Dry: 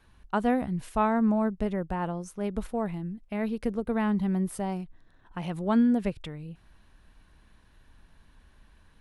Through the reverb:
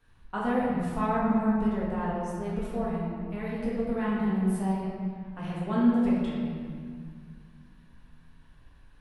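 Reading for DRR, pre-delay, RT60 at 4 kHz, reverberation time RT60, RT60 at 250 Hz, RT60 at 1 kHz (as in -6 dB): -8.0 dB, 4 ms, 1.4 s, 2.0 s, 2.9 s, 2.0 s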